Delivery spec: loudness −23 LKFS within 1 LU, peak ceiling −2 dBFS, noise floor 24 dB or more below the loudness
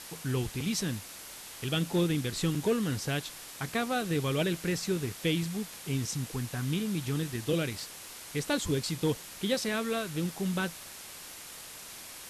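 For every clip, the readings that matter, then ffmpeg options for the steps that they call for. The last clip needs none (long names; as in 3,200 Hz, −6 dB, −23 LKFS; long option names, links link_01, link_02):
background noise floor −46 dBFS; target noise floor −56 dBFS; integrated loudness −32.0 LKFS; sample peak −18.5 dBFS; target loudness −23.0 LKFS
→ -af "afftdn=noise_reduction=10:noise_floor=-46"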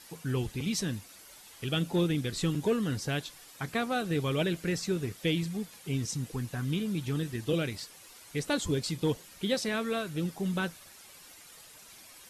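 background noise floor −53 dBFS; target noise floor −56 dBFS
→ -af "afftdn=noise_reduction=6:noise_floor=-53"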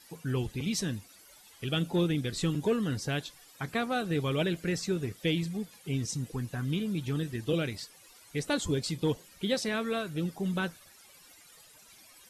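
background noise floor −57 dBFS; integrated loudness −32.0 LKFS; sample peak −19.0 dBFS; target loudness −23.0 LKFS
→ -af "volume=9dB"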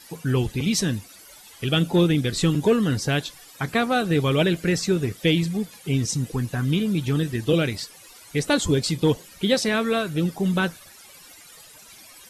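integrated loudness −23.0 LKFS; sample peak −10.0 dBFS; background noise floor −48 dBFS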